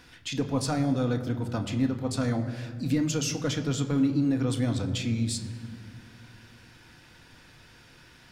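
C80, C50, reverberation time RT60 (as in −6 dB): 11.0 dB, 10.5 dB, 2.1 s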